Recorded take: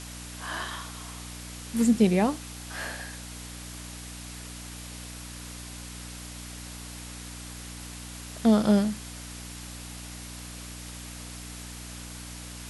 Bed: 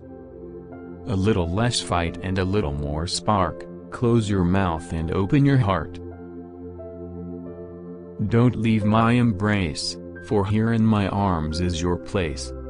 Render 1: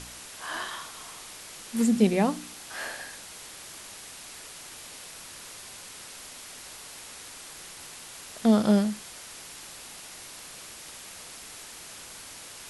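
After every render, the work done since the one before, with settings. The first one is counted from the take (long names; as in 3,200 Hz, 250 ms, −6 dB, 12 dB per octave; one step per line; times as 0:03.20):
hum removal 60 Hz, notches 5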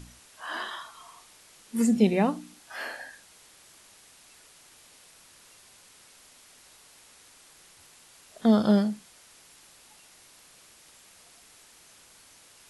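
noise reduction from a noise print 11 dB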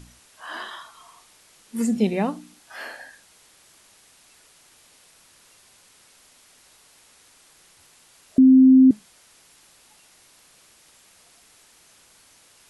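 0:08.38–0:08.91: beep over 261 Hz −8.5 dBFS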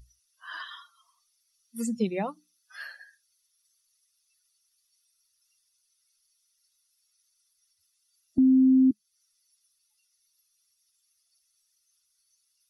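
spectral dynamics exaggerated over time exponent 2
downward compressor 1.5 to 1, threshold −30 dBFS, peak gain reduction 7 dB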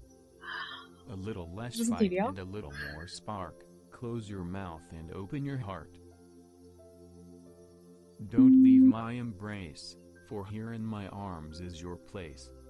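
mix in bed −18.5 dB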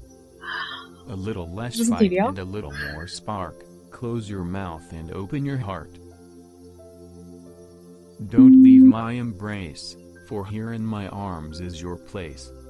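level +9.5 dB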